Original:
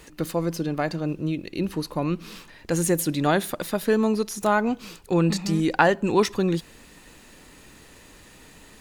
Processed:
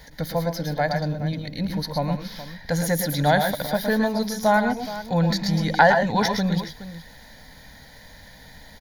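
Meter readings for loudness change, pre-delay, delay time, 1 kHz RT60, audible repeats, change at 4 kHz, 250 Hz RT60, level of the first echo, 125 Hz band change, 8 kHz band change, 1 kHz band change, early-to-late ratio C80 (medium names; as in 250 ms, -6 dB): +1.5 dB, no reverb, 111 ms, no reverb, 2, +4.5 dB, no reverb, -7.5 dB, +3.0 dB, -2.0 dB, +4.0 dB, no reverb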